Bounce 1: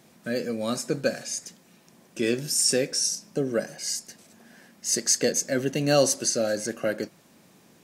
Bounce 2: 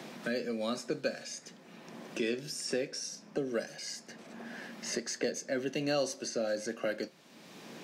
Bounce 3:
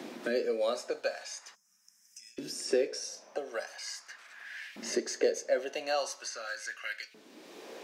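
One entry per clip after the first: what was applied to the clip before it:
three-band isolator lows -16 dB, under 160 Hz, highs -14 dB, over 5200 Hz; resonator 76 Hz, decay 0.21 s, mix 40%; three-band squash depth 70%; gain -4.5 dB
de-hum 216.2 Hz, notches 32; spectral gain 1.55–2.38, 220–5000 Hz -29 dB; LFO high-pass saw up 0.42 Hz 260–2400 Hz

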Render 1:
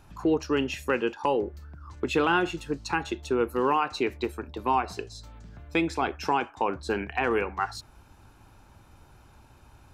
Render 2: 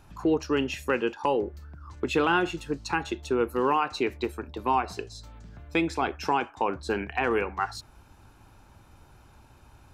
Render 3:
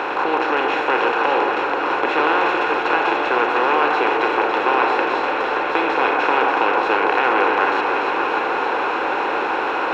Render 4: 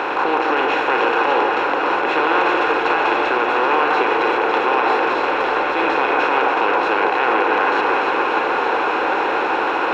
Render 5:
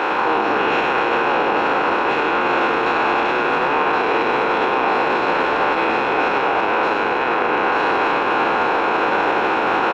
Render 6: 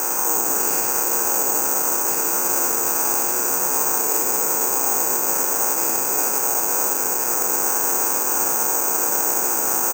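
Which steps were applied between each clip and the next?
nothing audible
per-bin compression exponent 0.2; three-band isolator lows -19 dB, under 360 Hz, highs -23 dB, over 3500 Hz; echo with dull and thin repeats by turns 0.146 s, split 1300 Hz, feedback 89%, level -5.5 dB
limiter -8.5 dBFS, peak gain reduction 6.5 dB; reverb RT60 3.0 s, pre-delay 61 ms, DRR 10 dB; gain +1.5 dB
spectral trails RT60 2.98 s; limiter -10 dBFS, peak gain reduction 9 dB; on a send: frequency-shifting echo 0.101 s, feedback 33%, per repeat -99 Hz, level -8 dB
air absorption 480 m; careless resampling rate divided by 6×, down none, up zero stuff; gain -8 dB

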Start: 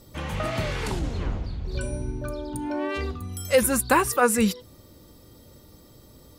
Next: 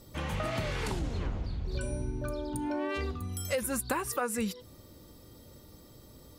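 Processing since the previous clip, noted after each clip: compressor 6:1, threshold -26 dBFS, peak gain reduction 12 dB; gain -2.5 dB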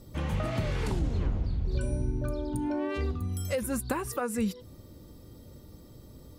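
low shelf 480 Hz +8.5 dB; gain -3 dB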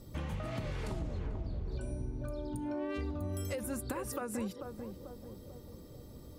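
compressor 4:1, threshold -34 dBFS, peak gain reduction 9 dB; narrowing echo 0.441 s, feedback 57%, band-pass 480 Hz, level -5 dB; gain -1.5 dB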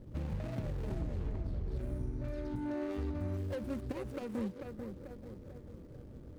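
median filter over 41 samples; gain +1 dB

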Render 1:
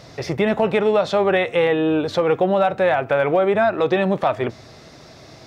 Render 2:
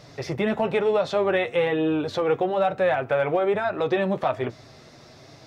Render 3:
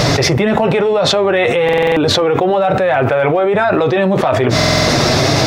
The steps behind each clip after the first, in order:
flange 1.1 Hz, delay 6.6 ms, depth 2.2 ms, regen -42%; gain -1 dB
stuck buffer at 1.64/4.55, samples 2048, times 6; fast leveller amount 100%; gain +5.5 dB

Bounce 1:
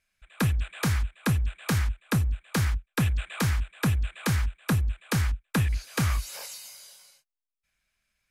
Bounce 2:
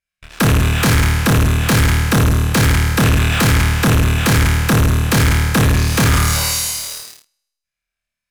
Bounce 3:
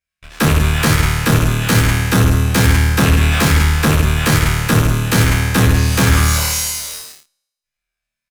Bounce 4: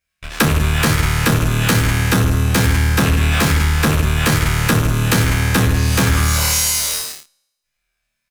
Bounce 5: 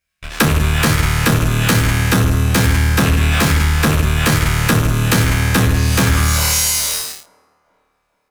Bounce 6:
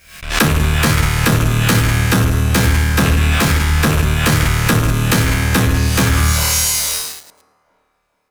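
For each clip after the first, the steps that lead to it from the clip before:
flutter echo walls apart 4.5 m, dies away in 1 s; sample leveller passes 5; gain -1 dB
endless flanger 11.3 ms +0.3 Hz; gain +3.5 dB
compressor 6:1, threshold -20 dBFS, peak gain reduction 11.5 dB; gain +7.5 dB
band-limited delay 0.43 s, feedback 42%, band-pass 600 Hz, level -22.5 dB; gain +1 dB
reverse delay 0.109 s, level -14 dB; backwards sustainer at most 100 dB/s

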